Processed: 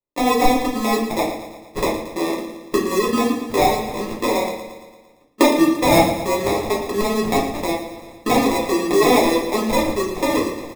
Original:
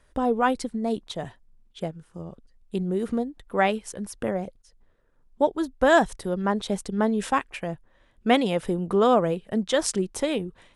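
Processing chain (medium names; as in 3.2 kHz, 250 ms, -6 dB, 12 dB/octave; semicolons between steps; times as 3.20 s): recorder AGC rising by 20 dB/s; steep high-pass 240 Hz 48 dB/octave; gate -52 dBFS, range -35 dB; treble shelf 5.2 kHz -11 dB; in parallel at -1 dB: compression, threshold -31 dBFS, peak gain reduction 19.5 dB; on the sum: sample-rate reducer 1.5 kHz, jitter 0%; feedback delay 114 ms, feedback 58%, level -11 dB; simulated room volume 50 m³, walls mixed, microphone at 0.97 m; trim -3 dB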